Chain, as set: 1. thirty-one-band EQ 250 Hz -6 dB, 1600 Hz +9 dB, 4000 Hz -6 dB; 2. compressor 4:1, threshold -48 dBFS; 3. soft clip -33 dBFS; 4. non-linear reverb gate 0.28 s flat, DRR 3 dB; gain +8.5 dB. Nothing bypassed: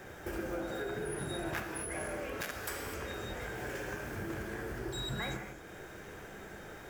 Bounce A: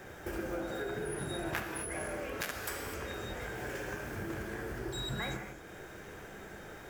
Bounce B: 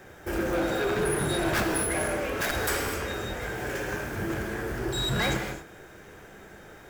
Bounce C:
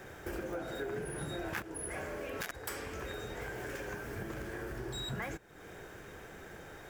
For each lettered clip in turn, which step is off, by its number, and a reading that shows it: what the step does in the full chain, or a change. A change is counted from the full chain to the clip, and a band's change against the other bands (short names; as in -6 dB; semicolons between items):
3, distortion -22 dB; 2, mean gain reduction 12.5 dB; 4, loudness change -1.5 LU